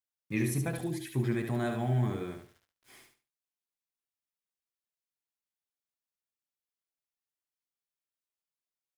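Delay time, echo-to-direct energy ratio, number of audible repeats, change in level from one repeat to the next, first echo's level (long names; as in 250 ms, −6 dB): 72 ms, −5.5 dB, 3, −12.0 dB, −6.0 dB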